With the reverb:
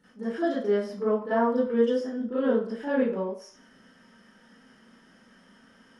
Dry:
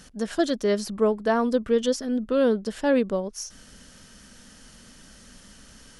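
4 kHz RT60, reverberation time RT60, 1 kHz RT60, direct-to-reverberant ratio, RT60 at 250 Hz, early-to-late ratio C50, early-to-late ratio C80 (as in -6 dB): 0.50 s, 0.50 s, 0.55 s, -12.5 dB, 0.35 s, 1.5 dB, 7.5 dB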